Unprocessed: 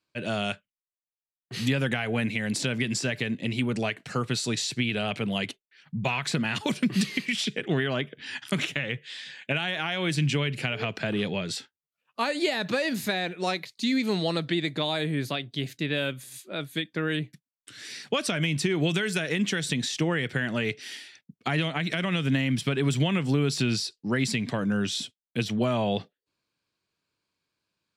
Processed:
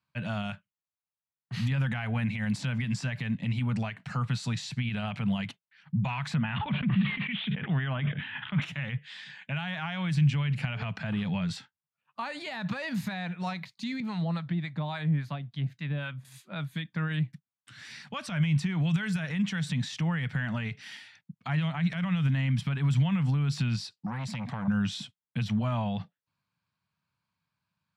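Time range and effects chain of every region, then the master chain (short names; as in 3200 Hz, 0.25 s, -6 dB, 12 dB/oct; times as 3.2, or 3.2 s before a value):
6.35–8.62 steep low-pass 3600 Hz 72 dB/oct + sustainer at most 38 dB/s
14–16.25 high shelf 3500 Hz -9 dB + harmonic tremolo 3.6 Hz, crossover 820 Hz
24.06–24.68 compressor 4:1, threshold -27 dBFS + core saturation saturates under 910 Hz
whole clip: HPF 86 Hz; limiter -21.5 dBFS; EQ curve 180 Hz 0 dB, 370 Hz -24 dB, 900 Hz -4 dB, 9800 Hz -19 dB; gain +6.5 dB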